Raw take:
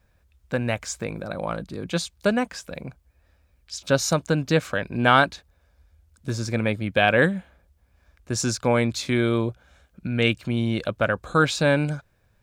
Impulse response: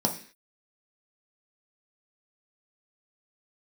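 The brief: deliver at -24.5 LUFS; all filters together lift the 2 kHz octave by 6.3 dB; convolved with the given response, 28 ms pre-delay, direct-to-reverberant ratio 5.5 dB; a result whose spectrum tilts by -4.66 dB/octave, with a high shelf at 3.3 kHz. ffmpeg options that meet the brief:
-filter_complex "[0:a]equalizer=f=2000:t=o:g=7.5,highshelf=f=3300:g=4,asplit=2[s0][s1];[1:a]atrim=start_sample=2205,adelay=28[s2];[s1][s2]afir=irnorm=-1:irlink=0,volume=0.178[s3];[s0][s3]amix=inputs=2:normalize=0,volume=0.531"

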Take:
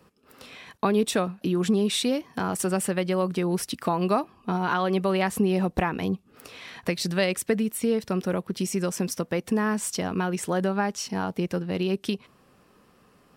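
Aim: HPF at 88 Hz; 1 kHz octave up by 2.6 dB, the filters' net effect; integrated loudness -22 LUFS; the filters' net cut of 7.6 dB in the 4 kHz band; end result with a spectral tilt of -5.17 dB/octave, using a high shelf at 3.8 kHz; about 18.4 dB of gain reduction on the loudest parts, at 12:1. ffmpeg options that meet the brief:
-af "highpass=88,equalizer=f=1000:t=o:g=4,highshelf=f=3800:g=-3.5,equalizer=f=4000:t=o:g=-8,acompressor=threshold=0.0141:ratio=12,volume=10"

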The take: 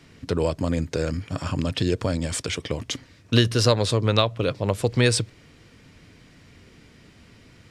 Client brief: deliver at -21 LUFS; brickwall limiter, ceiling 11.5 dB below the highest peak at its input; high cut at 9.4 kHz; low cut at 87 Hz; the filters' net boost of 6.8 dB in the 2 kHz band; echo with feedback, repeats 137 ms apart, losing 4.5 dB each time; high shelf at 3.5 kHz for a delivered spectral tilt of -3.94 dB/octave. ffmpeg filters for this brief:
-af "highpass=87,lowpass=9400,equalizer=f=2000:t=o:g=6.5,highshelf=f=3500:g=7,alimiter=limit=0.299:level=0:latency=1,aecho=1:1:137|274|411|548|685|822|959|1096|1233:0.596|0.357|0.214|0.129|0.0772|0.0463|0.0278|0.0167|0.01,volume=1.26"

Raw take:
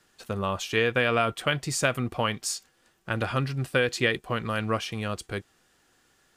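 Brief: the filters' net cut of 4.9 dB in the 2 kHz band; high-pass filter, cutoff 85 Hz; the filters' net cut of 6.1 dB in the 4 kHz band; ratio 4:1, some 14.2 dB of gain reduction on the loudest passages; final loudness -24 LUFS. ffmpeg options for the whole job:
-af "highpass=85,equalizer=f=2000:t=o:g=-5,equalizer=f=4000:t=o:g=-6.5,acompressor=threshold=0.0112:ratio=4,volume=7.5"

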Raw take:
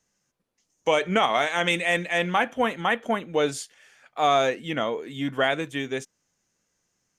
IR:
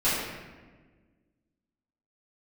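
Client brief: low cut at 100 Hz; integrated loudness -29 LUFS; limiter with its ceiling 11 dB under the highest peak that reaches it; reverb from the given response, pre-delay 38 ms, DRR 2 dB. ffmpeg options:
-filter_complex "[0:a]highpass=100,alimiter=limit=0.119:level=0:latency=1,asplit=2[s0][s1];[1:a]atrim=start_sample=2205,adelay=38[s2];[s1][s2]afir=irnorm=-1:irlink=0,volume=0.168[s3];[s0][s3]amix=inputs=2:normalize=0,volume=0.891"

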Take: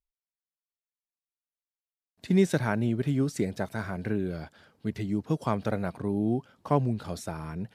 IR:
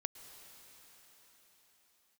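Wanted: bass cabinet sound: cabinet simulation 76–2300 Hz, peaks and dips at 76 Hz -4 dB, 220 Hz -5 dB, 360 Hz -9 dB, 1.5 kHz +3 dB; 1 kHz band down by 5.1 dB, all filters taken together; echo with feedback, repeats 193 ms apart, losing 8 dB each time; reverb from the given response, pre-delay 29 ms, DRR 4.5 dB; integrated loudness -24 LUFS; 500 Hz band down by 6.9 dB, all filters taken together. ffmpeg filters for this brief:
-filter_complex "[0:a]equalizer=f=500:t=o:g=-3,equalizer=f=1000:t=o:g=-6,aecho=1:1:193|386|579|772|965:0.398|0.159|0.0637|0.0255|0.0102,asplit=2[s0][s1];[1:a]atrim=start_sample=2205,adelay=29[s2];[s1][s2]afir=irnorm=-1:irlink=0,volume=0.75[s3];[s0][s3]amix=inputs=2:normalize=0,highpass=f=76:w=0.5412,highpass=f=76:w=1.3066,equalizer=f=76:t=q:w=4:g=-4,equalizer=f=220:t=q:w=4:g=-5,equalizer=f=360:t=q:w=4:g=-9,equalizer=f=1500:t=q:w=4:g=3,lowpass=f=2300:w=0.5412,lowpass=f=2300:w=1.3066,volume=2.37"

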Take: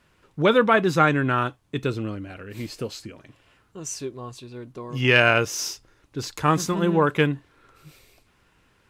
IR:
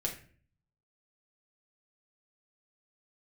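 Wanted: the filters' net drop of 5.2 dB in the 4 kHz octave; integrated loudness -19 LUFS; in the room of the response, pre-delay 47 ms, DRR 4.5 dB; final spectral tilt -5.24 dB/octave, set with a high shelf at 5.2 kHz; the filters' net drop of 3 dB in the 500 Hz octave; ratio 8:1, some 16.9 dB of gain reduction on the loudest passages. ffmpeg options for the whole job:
-filter_complex "[0:a]equalizer=f=500:t=o:g=-3.5,equalizer=f=4000:t=o:g=-5.5,highshelf=f=5200:g=-6,acompressor=threshold=0.0224:ratio=8,asplit=2[s0][s1];[1:a]atrim=start_sample=2205,adelay=47[s2];[s1][s2]afir=irnorm=-1:irlink=0,volume=0.447[s3];[s0][s3]amix=inputs=2:normalize=0,volume=7.08"

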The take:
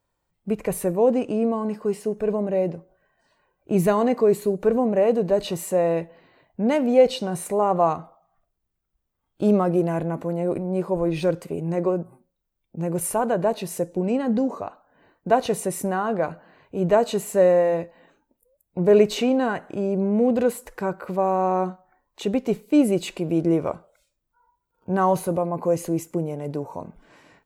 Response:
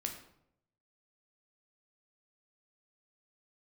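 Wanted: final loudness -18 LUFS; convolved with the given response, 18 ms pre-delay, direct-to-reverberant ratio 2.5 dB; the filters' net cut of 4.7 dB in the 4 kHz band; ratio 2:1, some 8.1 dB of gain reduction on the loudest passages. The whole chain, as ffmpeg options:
-filter_complex "[0:a]equalizer=f=4000:t=o:g=-6.5,acompressor=threshold=0.0501:ratio=2,asplit=2[s0][s1];[1:a]atrim=start_sample=2205,adelay=18[s2];[s1][s2]afir=irnorm=-1:irlink=0,volume=0.75[s3];[s0][s3]amix=inputs=2:normalize=0,volume=2.51"

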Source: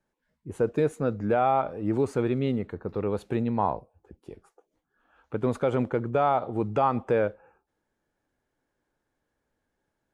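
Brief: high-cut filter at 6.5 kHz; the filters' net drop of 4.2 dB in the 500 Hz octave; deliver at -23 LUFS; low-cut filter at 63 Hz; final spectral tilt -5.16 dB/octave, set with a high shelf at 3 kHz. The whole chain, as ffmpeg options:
-af "highpass=63,lowpass=6500,equalizer=f=500:t=o:g=-5,highshelf=f=3000:g=-3.5,volume=2.11"

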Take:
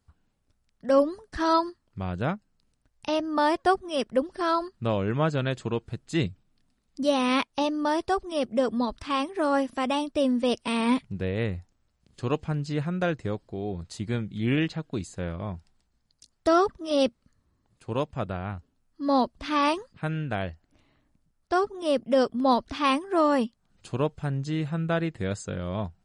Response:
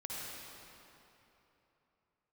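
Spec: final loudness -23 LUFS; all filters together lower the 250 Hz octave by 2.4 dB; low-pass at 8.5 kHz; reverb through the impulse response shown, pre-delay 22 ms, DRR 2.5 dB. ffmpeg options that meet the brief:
-filter_complex "[0:a]lowpass=8500,equalizer=f=250:t=o:g=-3,asplit=2[s0][s1];[1:a]atrim=start_sample=2205,adelay=22[s2];[s1][s2]afir=irnorm=-1:irlink=0,volume=0.668[s3];[s0][s3]amix=inputs=2:normalize=0,volume=1.5"

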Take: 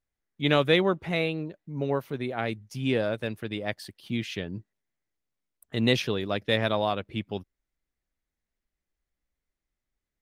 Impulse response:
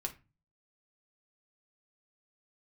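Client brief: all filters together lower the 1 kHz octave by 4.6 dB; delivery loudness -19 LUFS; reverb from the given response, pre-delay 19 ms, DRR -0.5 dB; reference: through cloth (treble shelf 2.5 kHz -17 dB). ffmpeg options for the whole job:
-filter_complex "[0:a]equalizer=f=1000:t=o:g=-3.5,asplit=2[s0][s1];[1:a]atrim=start_sample=2205,adelay=19[s2];[s1][s2]afir=irnorm=-1:irlink=0,volume=1.06[s3];[s0][s3]amix=inputs=2:normalize=0,highshelf=f=2500:g=-17,volume=2.37"

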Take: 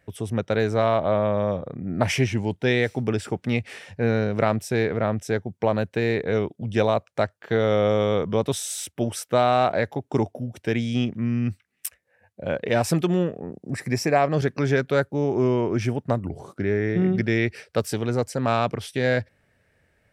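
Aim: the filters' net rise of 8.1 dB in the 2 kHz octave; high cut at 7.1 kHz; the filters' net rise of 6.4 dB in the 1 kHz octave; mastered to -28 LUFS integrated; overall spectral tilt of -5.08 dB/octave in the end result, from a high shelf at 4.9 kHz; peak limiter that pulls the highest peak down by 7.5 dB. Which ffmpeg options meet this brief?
-af "lowpass=7100,equalizer=f=1000:t=o:g=7.5,equalizer=f=2000:t=o:g=8.5,highshelf=f=4900:g=-6.5,volume=0.531,alimiter=limit=0.251:level=0:latency=1"

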